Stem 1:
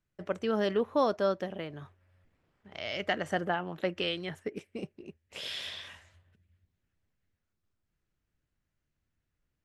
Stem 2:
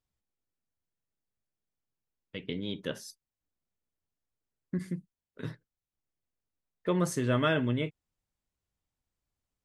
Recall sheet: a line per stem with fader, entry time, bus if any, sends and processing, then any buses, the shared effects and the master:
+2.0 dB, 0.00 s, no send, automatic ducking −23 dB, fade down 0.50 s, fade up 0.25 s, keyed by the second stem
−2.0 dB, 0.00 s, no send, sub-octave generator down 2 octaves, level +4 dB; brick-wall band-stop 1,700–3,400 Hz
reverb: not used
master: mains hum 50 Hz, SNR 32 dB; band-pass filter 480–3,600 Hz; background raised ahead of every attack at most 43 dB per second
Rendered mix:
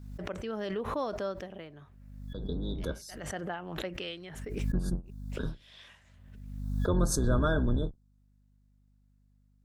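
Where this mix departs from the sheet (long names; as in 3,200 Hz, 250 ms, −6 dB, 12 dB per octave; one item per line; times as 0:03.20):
stem 1 +2.0 dB → −7.0 dB
master: missing band-pass filter 480–3,600 Hz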